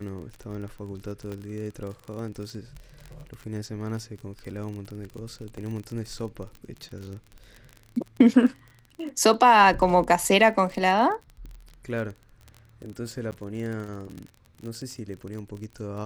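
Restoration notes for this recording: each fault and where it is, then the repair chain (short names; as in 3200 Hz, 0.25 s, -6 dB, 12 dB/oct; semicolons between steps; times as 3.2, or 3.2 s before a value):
crackle 35/s -33 dBFS
1.32 pop -24 dBFS
5.57 gap 4.5 ms
13.31–13.32 gap 9.5 ms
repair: de-click; interpolate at 5.57, 4.5 ms; interpolate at 13.31, 9.5 ms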